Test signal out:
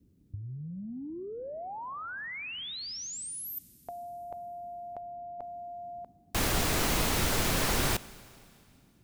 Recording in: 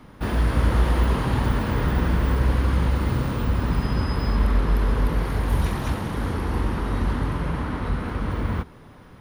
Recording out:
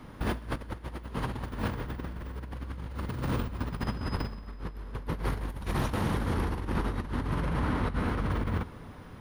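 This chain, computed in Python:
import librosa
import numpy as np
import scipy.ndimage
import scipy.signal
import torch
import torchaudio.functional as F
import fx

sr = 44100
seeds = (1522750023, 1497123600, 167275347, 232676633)

y = fx.over_compress(x, sr, threshold_db=-26.0, ratio=-0.5)
y = fx.rev_schroeder(y, sr, rt60_s=2.5, comb_ms=32, drr_db=18.0)
y = fx.dmg_noise_band(y, sr, seeds[0], low_hz=39.0, high_hz=280.0, level_db=-58.0)
y = y * 10.0 ** (-5.5 / 20.0)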